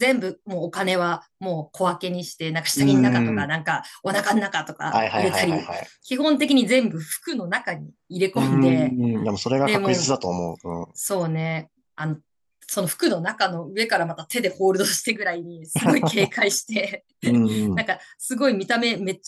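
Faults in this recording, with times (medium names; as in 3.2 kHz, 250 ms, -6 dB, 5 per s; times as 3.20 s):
6.48 s: dropout 3.2 ms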